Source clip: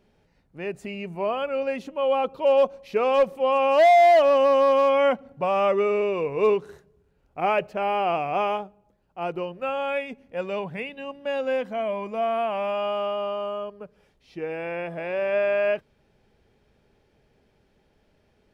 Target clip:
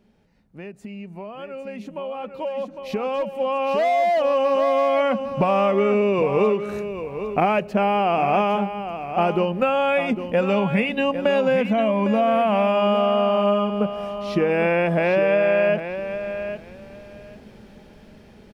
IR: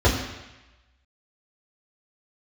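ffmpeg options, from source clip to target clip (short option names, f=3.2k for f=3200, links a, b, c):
-af "equalizer=f=210:t=o:w=0.39:g=10.5,acompressor=threshold=-34dB:ratio=10,aecho=1:1:805|1610|2415:0.316|0.0569|0.0102,dynaudnorm=f=740:g=9:m=17dB"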